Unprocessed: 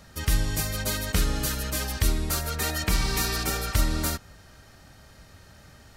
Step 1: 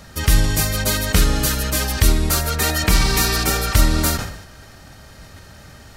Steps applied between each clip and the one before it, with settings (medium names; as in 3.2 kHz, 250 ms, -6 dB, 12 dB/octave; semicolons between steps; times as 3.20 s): decay stretcher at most 68 dB/s; trim +8.5 dB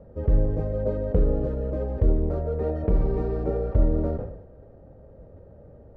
resonant low-pass 510 Hz, resonance Q 4.9; bass shelf 110 Hz +4 dB; trim -8.5 dB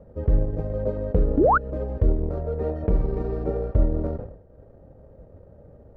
painted sound rise, 1.37–1.58 s, 240–1600 Hz -17 dBFS; transient shaper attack +1 dB, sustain -7 dB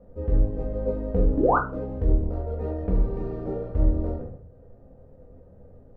simulated room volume 210 m³, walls furnished, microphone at 1.9 m; trim -6.5 dB